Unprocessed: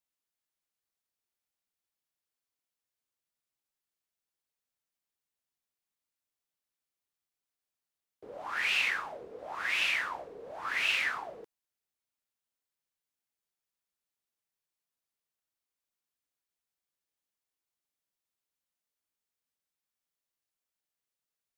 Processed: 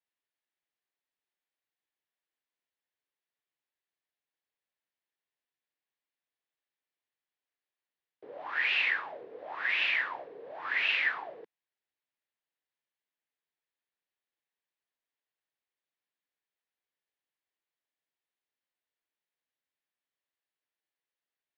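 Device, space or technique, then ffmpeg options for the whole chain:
kitchen radio: -af "highpass=180,equalizer=frequency=210:width_type=q:width=4:gain=-8,equalizer=frequency=1300:width_type=q:width=4:gain=-4,equalizer=frequency=1800:width_type=q:width=4:gain=5,lowpass=frequency=3900:width=0.5412,lowpass=frequency=3900:width=1.3066"

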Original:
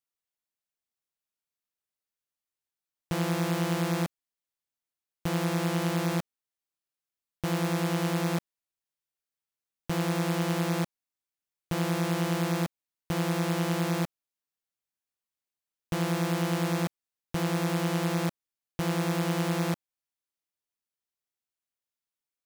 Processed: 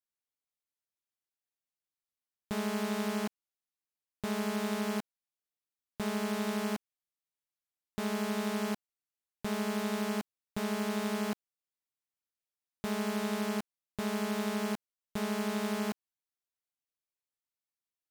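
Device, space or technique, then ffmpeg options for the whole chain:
nightcore: -af "asetrate=54684,aresample=44100,volume=-5dB"

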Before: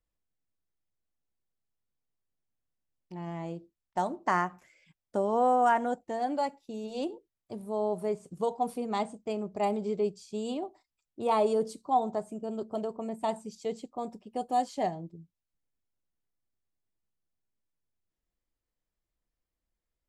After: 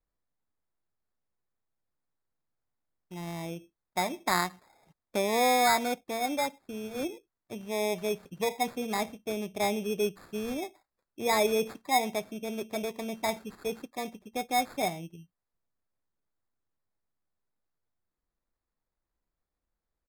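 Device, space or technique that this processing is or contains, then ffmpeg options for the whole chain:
crushed at another speed: -af "asetrate=55125,aresample=44100,acrusher=samples=12:mix=1:aa=0.000001,asetrate=35280,aresample=44100"

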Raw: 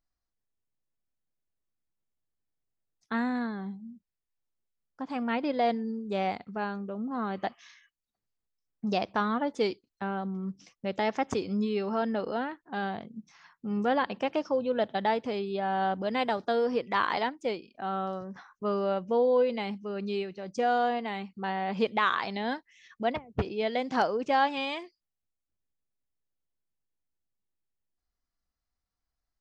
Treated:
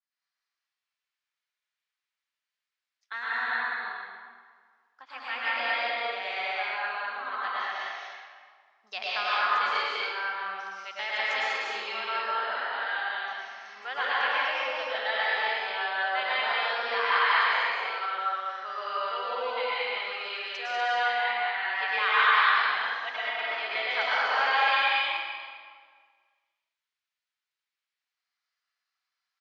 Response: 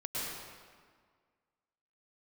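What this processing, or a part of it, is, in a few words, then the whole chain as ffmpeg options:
stadium PA: -filter_complex "[0:a]highpass=220,highpass=230,highpass=1400,equalizer=frequency=2200:width_type=o:width=2.9:gain=6.5,aecho=1:1:195.3|242:0.708|0.708[link_01];[1:a]atrim=start_sample=2205[link_02];[link_01][link_02]afir=irnorm=-1:irlink=0,lowpass=5200,adynamicequalizer=threshold=0.0178:dfrequency=3200:dqfactor=0.7:tfrequency=3200:tqfactor=0.7:attack=5:release=100:ratio=0.375:range=2:mode=cutabove:tftype=highshelf"

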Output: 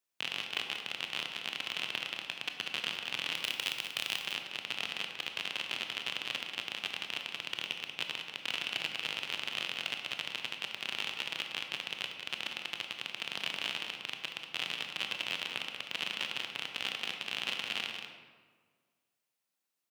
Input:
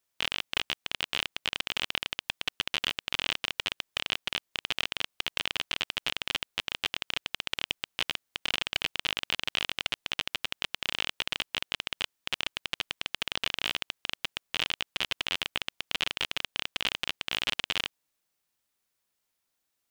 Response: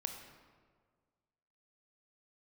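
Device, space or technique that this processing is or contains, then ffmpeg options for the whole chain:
PA in a hall: -filter_complex "[0:a]asettb=1/sr,asplit=3[link_01][link_02][link_03];[link_01]atrim=end=3.354[link_04];[link_02]atrim=start=3.35:end=4.18,asetpts=PTS-STARTPTS,afade=type=in:duration=0.004:curve=qsin,afade=type=out:start_time=0.826:duration=0.004:curve=qsin,aemphasis=mode=production:type=50kf[link_05];[link_03]atrim=start=4.176[link_06];[link_04][link_05]acrossfade=duration=0.004:curve1=hsin:curve2=qsin[link_07];[link_07][link_06]acrossfade=duration=0.004:curve1=qsin:curve2=hsin,highpass=frequency=120:width=0.5412,highpass=frequency=120:width=1.3066,equalizer=frequency=2600:width_type=o:width=0.22:gain=3,aecho=1:1:187:0.422[link_08];[1:a]atrim=start_sample=2205[link_09];[link_08][link_09]afir=irnorm=-1:irlink=0,volume=-5dB"

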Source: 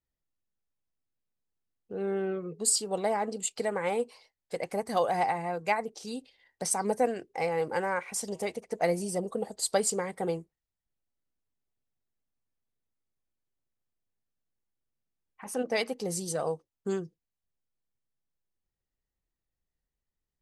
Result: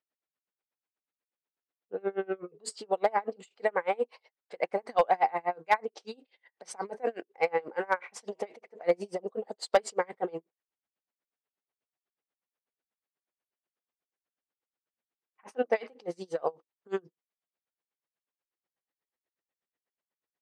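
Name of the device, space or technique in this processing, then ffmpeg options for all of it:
helicopter radio: -af "highpass=390,lowpass=2800,aeval=exprs='val(0)*pow(10,-30*(0.5-0.5*cos(2*PI*8.2*n/s))/20)':channel_layout=same,asoftclip=type=hard:threshold=-21.5dB,volume=8dB"

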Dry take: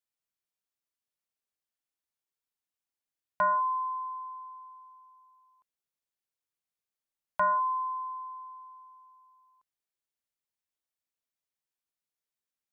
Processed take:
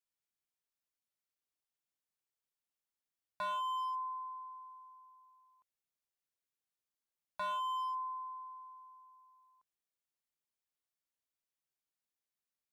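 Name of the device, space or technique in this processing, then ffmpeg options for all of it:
limiter into clipper: -af "alimiter=level_in=3dB:limit=-24dB:level=0:latency=1,volume=-3dB,asoftclip=type=hard:threshold=-31.5dB,volume=-3.5dB"

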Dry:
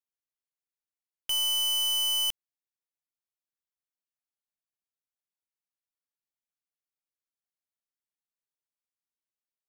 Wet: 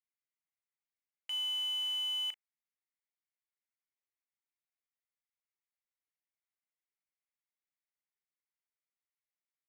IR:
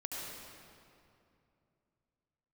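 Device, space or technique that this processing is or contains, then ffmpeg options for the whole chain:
megaphone: -filter_complex "[0:a]highpass=670,lowpass=2800,equalizer=frequency=2100:width_type=o:width=0.4:gain=10.5,asoftclip=type=hard:threshold=-29dB,asplit=2[link_01][link_02];[link_02]adelay=37,volume=-12dB[link_03];[link_01][link_03]amix=inputs=2:normalize=0,volume=-5.5dB"

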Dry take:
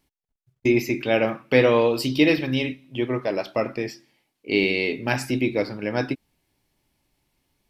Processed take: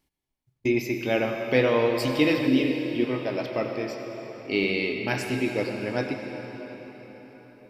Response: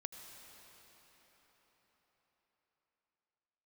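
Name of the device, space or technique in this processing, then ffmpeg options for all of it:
cathedral: -filter_complex "[1:a]atrim=start_sample=2205[link_01];[0:a][link_01]afir=irnorm=-1:irlink=0,asettb=1/sr,asplit=3[link_02][link_03][link_04];[link_02]atrim=end=2.474[link_05];[link_03]atrim=start=2.47:end=3.04,asetpts=PTS-STARTPTS,afade=type=in:duration=0.004:curve=qsin,afade=type=out:start_time=0.566:duration=0.004:curve=qsin,equalizer=frequency=125:width_type=o:width=1:gain=-4,equalizer=frequency=250:width_type=o:width=1:gain=9,equalizer=frequency=1000:width_type=o:width=1:gain=-7[link_06];[link_04]atrim=start=3.036[link_07];[link_05][link_06]acrossfade=duration=0.004:curve1=hsin:curve2=qsin[link_08];[link_08][link_07]acrossfade=duration=0.004:curve1=qsin:curve2=hsin"

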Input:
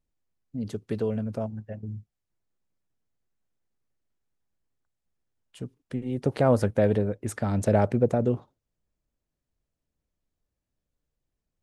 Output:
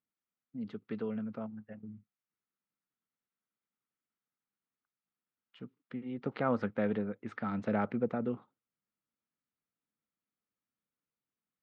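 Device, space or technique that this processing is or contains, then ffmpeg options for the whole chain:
kitchen radio: -af "highpass=200,equalizer=frequency=210:width_type=q:width=4:gain=5,equalizer=frequency=380:width_type=q:width=4:gain=-4,equalizer=frequency=610:width_type=q:width=4:gain=-7,equalizer=frequency=1300:width_type=q:width=4:gain=9,equalizer=frequency=2100:width_type=q:width=4:gain=4,lowpass=frequency=3700:width=0.5412,lowpass=frequency=3700:width=1.3066,volume=-7.5dB"

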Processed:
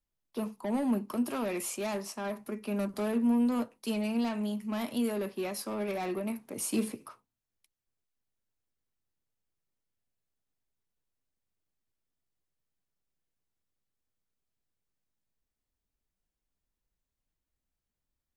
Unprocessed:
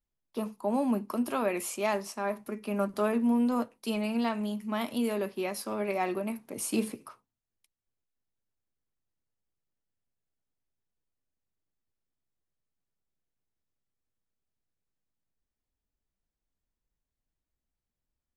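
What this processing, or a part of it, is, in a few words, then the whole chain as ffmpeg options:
one-band saturation: -filter_complex "[0:a]acrossover=split=340|4500[link_01][link_02][link_03];[link_02]asoftclip=type=tanh:threshold=-33dB[link_04];[link_01][link_04][link_03]amix=inputs=3:normalize=0"

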